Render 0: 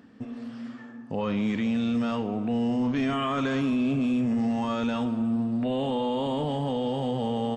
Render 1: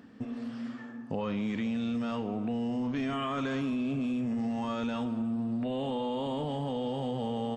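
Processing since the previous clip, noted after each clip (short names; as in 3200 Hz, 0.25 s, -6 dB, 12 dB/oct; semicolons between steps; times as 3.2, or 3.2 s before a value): compressor, threshold -29 dBFS, peak gain reduction 6.5 dB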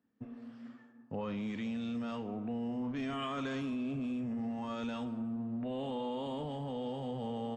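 three-band expander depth 100%; gain -5 dB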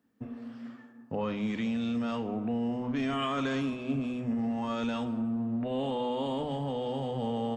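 notches 50/100/150/200/250 Hz; gain +6.5 dB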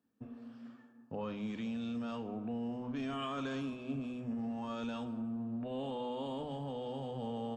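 bell 2000 Hz -8 dB 0.21 oct; gain -7.5 dB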